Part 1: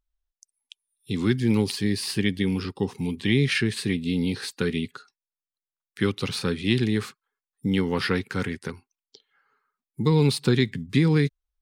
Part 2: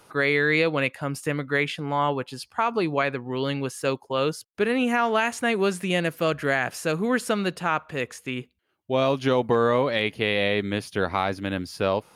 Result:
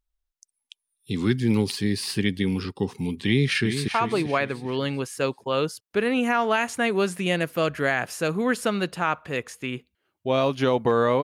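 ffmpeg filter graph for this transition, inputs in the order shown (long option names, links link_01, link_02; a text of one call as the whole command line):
ffmpeg -i cue0.wav -i cue1.wav -filter_complex "[0:a]apad=whole_dur=11.23,atrim=end=11.23,atrim=end=3.882[link_01];[1:a]atrim=start=2.518:end=9.87[link_02];[link_01][link_02]acrossfade=duration=0.004:curve1=hsin:curve2=hsin,asplit=2[link_03][link_04];[link_04]afade=type=in:start_time=3.23:duration=0.01,afade=type=out:start_time=3.88:duration=0.01,aecho=0:1:390|780|1170|1560:0.375837|0.131543|0.0460401|0.016114[link_05];[link_03][link_05]amix=inputs=2:normalize=0" out.wav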